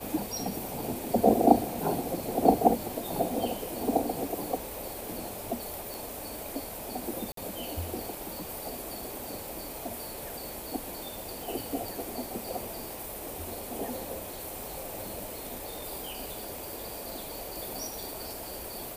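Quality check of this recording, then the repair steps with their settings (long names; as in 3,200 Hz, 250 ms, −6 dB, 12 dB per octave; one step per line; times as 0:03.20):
0:05.94: click
0:07.32–0:07.37: drop-out 53 ms
0:15.76: click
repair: click removal
repair the gap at 0:07.32, 53 ms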